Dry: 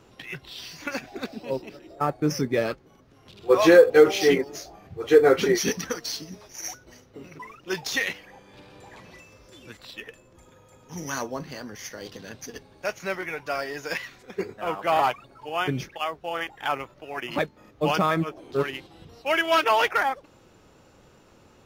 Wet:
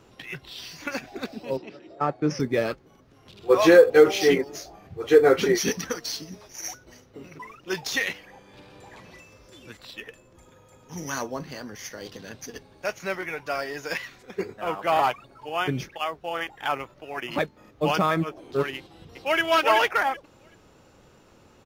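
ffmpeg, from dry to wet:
-filter_complex "[0:a]asettb=1/sr,asplit=3[a][b][c];[a]atrim=end=1.574[d];[b]atrim=start=1.57:end=2.4,asetpts=PTS-STARTPTS,afade=t=in:d=0.004:c=qsin,afade=t=out:st=0.826:d=0.004:c=qsin,highpass=120,lowpass=4.9k[e];[c]atrim=start=2.396[f];[d][e]acrossfade=d=0.004:c1=hsin:c2=qsin[g];[g][f]acrossfade=d=0.004:c1=qsin:c2=hsin,asplit=2[h][i];[i]afade=t=in:st=18.77:d=0.01,afade=t=out:st=19.4:d=0.01,aecho=0:1:380|760|1140:0.794328|0.119149|0.0178724[j];[h][j]amix=inputs=2:normalize=0"

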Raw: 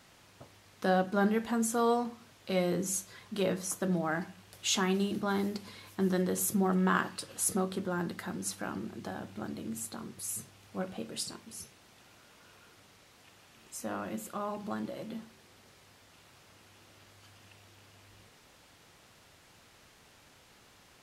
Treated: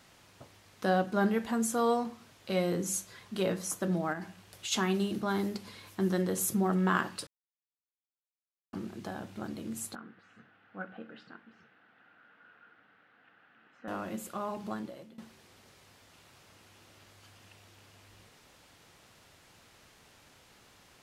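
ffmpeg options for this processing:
-filter_complex "[0:a]asplit=3[a][b][c];[a]afade=t=out:st=4.12:d=0.02[d];[b]acompressor=threshold=-34dB:ratio=6:attack=3.2:release=140:knee=1:detection=peak,afade=t=in:st=4.12:d=0.02,afade=t=out:st=4.71:d=0.02[e];[c]afade=t=in:st=4.71:d=0.02[f];[d][e][f]amix=inputs=3:normalize=0,asettb=1/sr,asplit=3[g][h][i];[g]atrim=end=9.954[j];[h]atrim=start=9.95:end=13.88,asetpts=PTS-STARTPTS,afade=t=in:d=0.004:c=qsin,afade=t=out:st=3.926:d=0.004:c=qsin,highpass=270,equalizer=f=380:t=q:w=4:g=-10,equalizer=f=590:t=q:w=4:g=-8,equalizer=f=1k:t=q:w=4:g=-9,equalizer=f=1.5k:t=q:w=4:g=8,equalizer=f=2.3k:t=q:w=4:g=-7,lowpass=f=2.4k:w=0.5412,lowpass=f=2.4k:w=1.3066[k];[i]atrim=start=13.876[l];[j][k]acrossfade=d=0.004:c1=hsin:c2=qsin[m];[m][l]acrossfade=d=0.004:c1=qsin:c2=hsin,asplit=4[n][o][p][q];[n]atrim=end=7.27,asetpts=PTS-STARTPTS,afade=t=out:st=7.266:d=0.004:c=hsin[r];[o]atrim=start=7.27:end=8.73,asetpts=PTS-STARTPTS,volume=0[s];[p]atrim=start=8.73:end=15.18,asetpts=PTS-STARTPTS,afade=t=in:d=0.004:c=hsin,afade=t=out:st=5.96:d=0.49:silence=0.1[t];[q]atrim=start=15.18,asetpts=PTS-STARTPTS,afade=t=in:d=0.004:c=hsin:silence=0.1[u];[r][s][t][u]concat=n=4:v=0:a=1"

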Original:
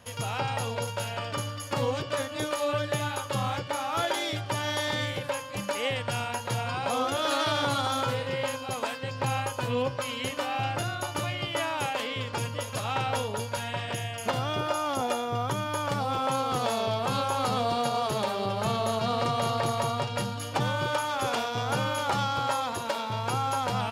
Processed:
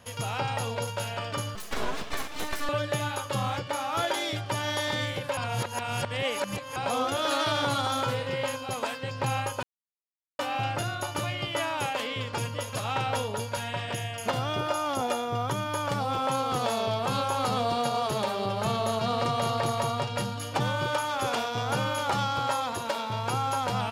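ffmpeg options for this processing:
-filter_complex "[0:a]asettb=1/sr,asplit=3[a][b][c];[a]atrim=end=1.554[d];[b]atrim=start=1.55:end=2.69,asetpts=PTS-STARTPTS,afade=t=in:d=0.004:c=qsin,afade=t=out:st=1.136:d=0.004:c=qsin,aeval=exprs='abs(val(0))':c=same[e];[c]atrim=start=2.686[f];[d][e]acrossfade=d=0.004:c1=hsin:c2=qsin[g];[g][f]acrossfade=d=0.004:c1=qsin:c2=hsin,asplit=5[h][i][j][k][l];[h]atrim=end=5.372[m];[i]atrim=start=5.368:end=6.762,asetpts=PTS-STARTPTS,areverse[n];[j]atrim=start=6.758:end=9.63,asetpts=PTS-STARTPTS,afade=t=out:st=2.868:d=0.004:c=hsin[o];[k]atrim=start=9.63:end=10.39,asetpts=PTS-STARTPTS,volume=0[p];[l]atrim=start=10.39,asetpts=PTS-STARTPTS,afade=t=in:d=0.004:c=hsin[q];[m][n]acrossfade=d=0.004:c1=hsin:c2=hsin[r];[o][p][q]concat=n=3:v=0:a=1[s];[r][s]acrossfade=d=0.004:c1=hsin:c2=hsin"

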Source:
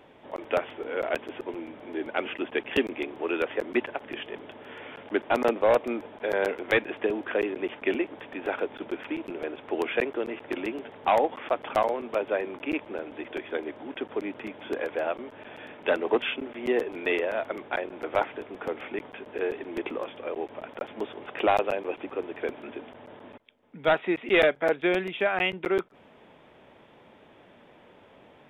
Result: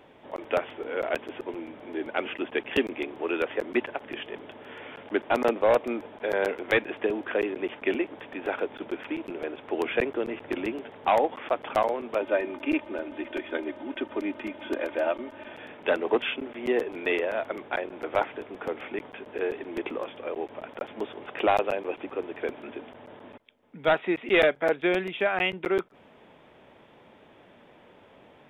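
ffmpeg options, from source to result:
-filter_complex "[0:a]asettb=1/sr,asplit=3[a][b][c];[a]atrim=end=9.834[d];[b]atrim=start=9.83:end=10.75,asetpts=PTS-STARTPTS,afade=t=in:d=0.004:c=qsin,afade=t=out:st=0.916:d=0.004:c=qsin,lowshelf=f=160:g=7.5[e];[c]atrim=start=10.746[f];[d][e]acrossfade=d=0.004:c1=hsin:c2=qsin[g];[g][f]acrossfade=d=0.004:c1=qsin:c2=hsin,asettb=1/sr,asplit=3[h][i][j];[h]atrim=end=12.214[k];[i]atrim=start=12.21:end=15.54,asetpts=PTS-STARTPTS,afade=t=in:d=0.004:c=qsin,afade=t=out:st=3.326:d=0.004:c=qsin,aecho=1:1:3.3:0.65,atrim=end_sample=146853[l];[j]atrim=start=15.536[m];[k][l]acrossfade=d=0.004:c1=hsin:c2=qsin[n];[n][m]acrossfade=d=0.004:c1=qsin:c2=hsin"

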